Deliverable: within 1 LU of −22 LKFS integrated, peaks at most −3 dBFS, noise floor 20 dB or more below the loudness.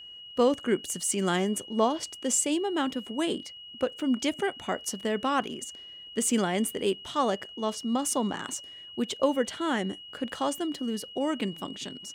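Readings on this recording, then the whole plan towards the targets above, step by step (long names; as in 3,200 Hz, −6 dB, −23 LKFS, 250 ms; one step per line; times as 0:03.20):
interfering tone 2,900 Hz; level of the tone −43 dBFS; integrated loudness −29.5 LKFS; sample peak −12.0 dBFS; target loudness −22.0 LKFS
→ notch filter 2,900 Hz, Q 30
level +7.5 dB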